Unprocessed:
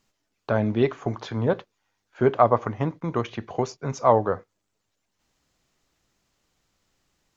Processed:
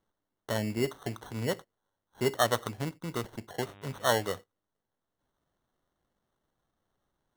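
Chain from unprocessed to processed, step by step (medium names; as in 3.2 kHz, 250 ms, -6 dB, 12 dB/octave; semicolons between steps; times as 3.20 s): sample-and-hold 18×; 3.62–4.24 s: mains buzz 100 Hz, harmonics 38, -45 dBFS -4 dB/octave; trim -8.5 dB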